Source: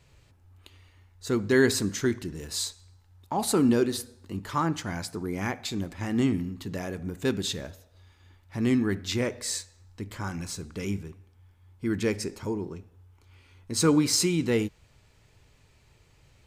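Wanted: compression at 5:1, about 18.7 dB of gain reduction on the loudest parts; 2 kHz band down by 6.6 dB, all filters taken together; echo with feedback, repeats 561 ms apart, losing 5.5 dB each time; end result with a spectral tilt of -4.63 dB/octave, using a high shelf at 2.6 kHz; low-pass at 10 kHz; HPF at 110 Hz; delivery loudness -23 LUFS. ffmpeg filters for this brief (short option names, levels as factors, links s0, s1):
-af "highpass=110,lowpass=10000,equalizer=f=2000:t=o:g=-7,highshelf=f=2600:g=-3.5,acompressor=threshold=0.01:ratio=5,aecho=1:1:561|1122|1683|2244|2805|3366|3927:0.531|0.281|0.149|0.079|0.0419|0.0222|0.0118,volume=10"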